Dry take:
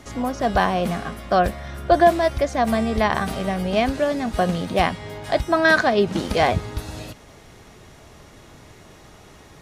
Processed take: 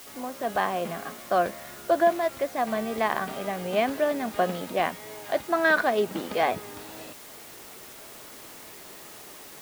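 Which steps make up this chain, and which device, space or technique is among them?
dictaphone (BPF 270–3300 Hz; AGC gain up to 8.5 dB; wow and flutter; white noise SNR 18 dB); gain -9 dB

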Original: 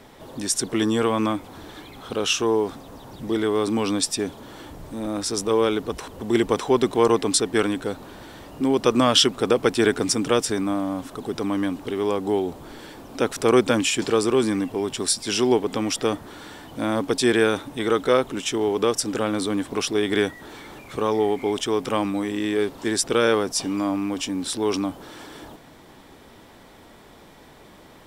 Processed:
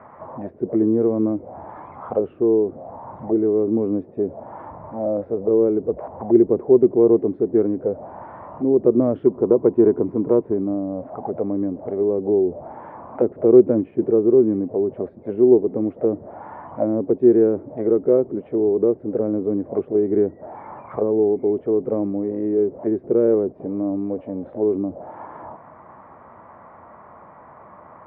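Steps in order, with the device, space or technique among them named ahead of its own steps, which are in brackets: envelope filter bass rig (envelope low-pass 380–1200 Hz down, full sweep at -20.5 dBFS; speaker cabinet 87–2400 Hz, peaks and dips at 88 Hz +4 dB, 290 Hz -6 dB, 410 Hz -5 dB, 620 Hz +6 dB, 2100 Hz +5 dB); 9.26–10.54 bell 990 Hz +14 dB 0.33 oct

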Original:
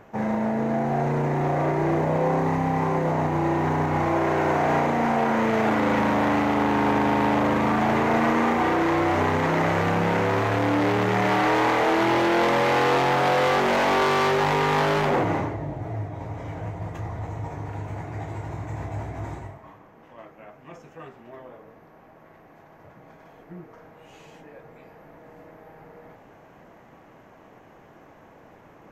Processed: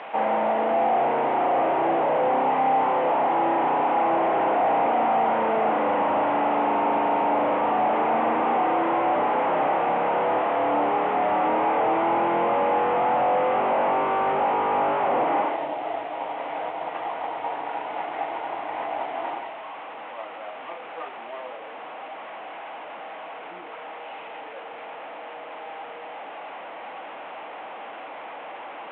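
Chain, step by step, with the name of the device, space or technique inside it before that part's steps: digital answering machine (BPF 340–3100 Hz; delta modulation 16 kbps, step -39.5 dBFS; speaker cabinet 370–3800 Hz, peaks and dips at 390 Hz -7 dB, 800 Hz +5 dB, 1700 Hz -4 dB); gain +8 dB

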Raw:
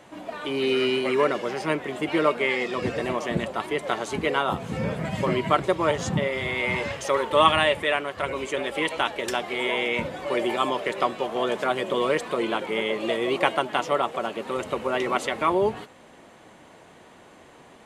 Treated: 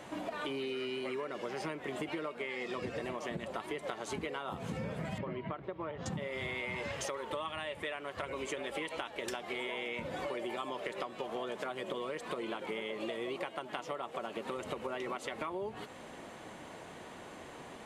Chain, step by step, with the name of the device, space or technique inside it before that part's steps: serial compression, peaks first (compressor, threshold -32 dBFS, peak gain reduction 18 dB; compressor 3:1, threshold -38 dBFS, peak gain reduction 7.5 dB); 5.18–6.06 air absorption 380 m; gain +1.5 dB

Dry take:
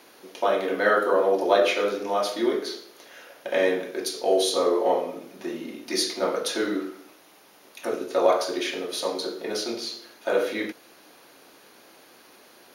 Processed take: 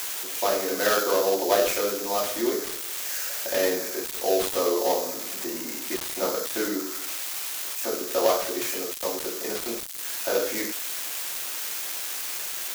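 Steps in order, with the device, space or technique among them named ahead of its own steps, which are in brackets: budget class-D amplifier (switching dead time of 0.17 ms; switching spikes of -13 dBFS); gain -2 dB

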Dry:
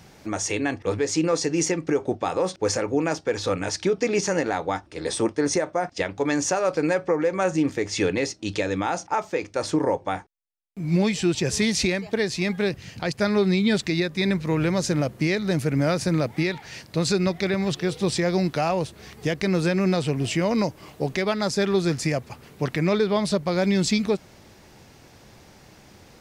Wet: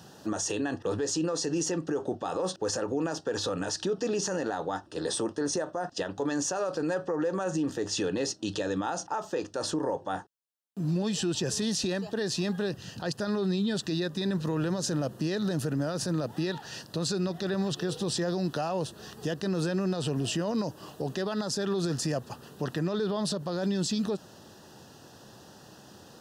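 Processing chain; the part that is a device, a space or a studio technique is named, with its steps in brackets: PA system with an anti-feedback notch (HPF 120 Hz 12 dB/oct; Butterworth band-stop 2200 Hz, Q 2.7; limiter -21.5 dBFS, peak gain reduction 12 dB)

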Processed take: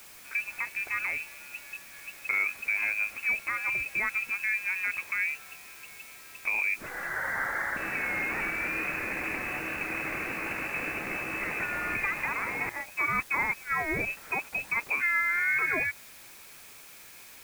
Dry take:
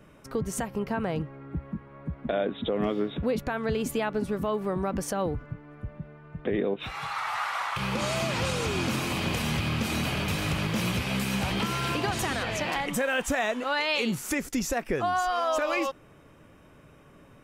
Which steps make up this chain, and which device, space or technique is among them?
12.69–14.17 gate -27 dBFS, range -15 dB; scrambled radio voice (BPF 300–2600 Hz; inverted band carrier 2800 Hz; white noise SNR 18 dB)

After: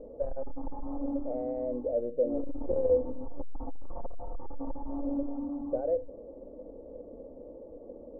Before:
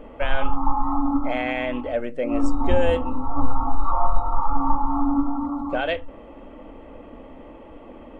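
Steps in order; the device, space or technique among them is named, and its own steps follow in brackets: overdriven synthesiser ladder filter (soft clip -18.5 dBFS, distortion -9 dB; ladder low-pass 570 Hz, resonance 65%); gain +1.5 dB

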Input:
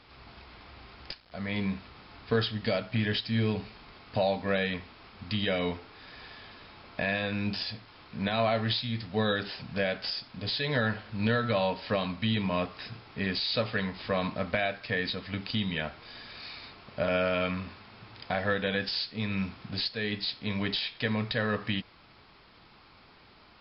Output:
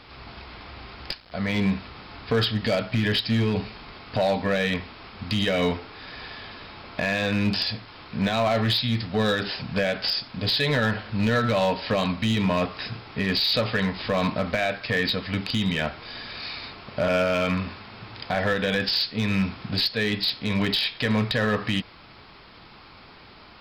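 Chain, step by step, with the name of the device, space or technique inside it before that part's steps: limiter into clipper (limiter -21 dBFS, peak gain reduction 5.5 dB; hard clip -25 dBFS, distortion -19 dB); gain +8.5 dB

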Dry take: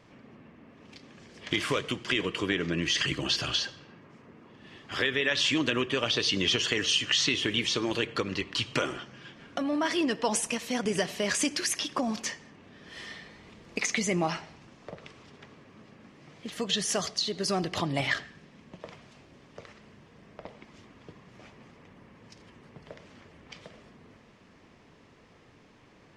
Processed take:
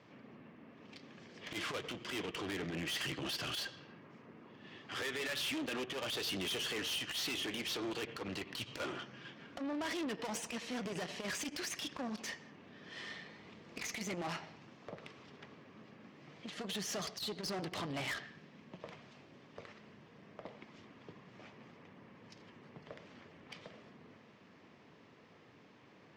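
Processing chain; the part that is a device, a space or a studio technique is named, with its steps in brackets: valve radio (BPF 110–5300 Hz; tube stage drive 34 dB, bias 0.5; core saturation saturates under 200 Hz); HPF 66 Hz; gain -1 dB

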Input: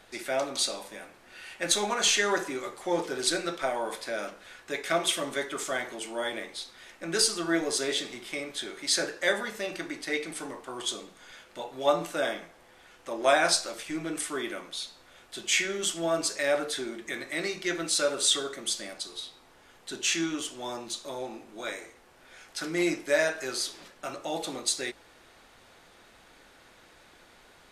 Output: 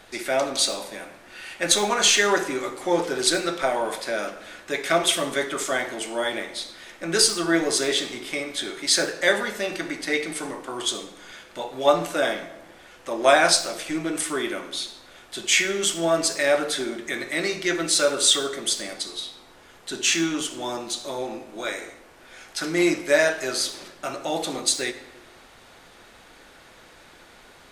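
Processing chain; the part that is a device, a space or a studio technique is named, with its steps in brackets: saturated reverb return (on a send at -11 dB: reverb RT60 1.0 s, pre-delay 57 ms + soft clip -28 dBFS, distortion -9 dB); on the sum: gain +6 dB

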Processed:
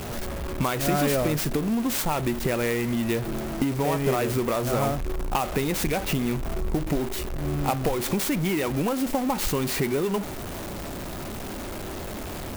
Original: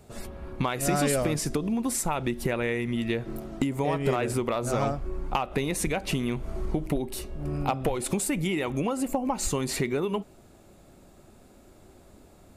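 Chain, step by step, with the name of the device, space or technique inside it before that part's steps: early CD player with a faulty converter (zero-crossing step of -28.5 dBFS; clock jitter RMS 0.038 ms)

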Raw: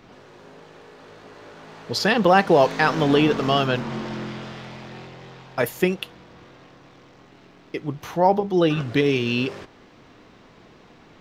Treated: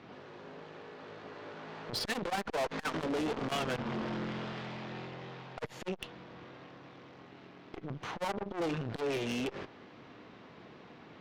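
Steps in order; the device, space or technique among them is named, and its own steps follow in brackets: valve radio (BPF 100–4100 Hz; tube stage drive 29 dB, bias 0.55; core saturation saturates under 350 Hz)

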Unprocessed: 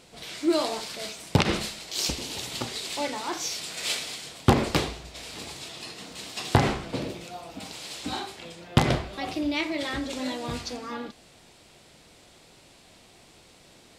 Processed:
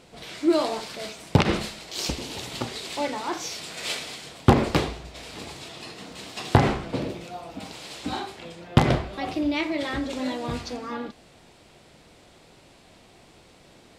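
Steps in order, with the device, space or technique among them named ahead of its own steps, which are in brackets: behind a face mask (high shelf 3000 Hz -7.5 dB); gain +3 dB

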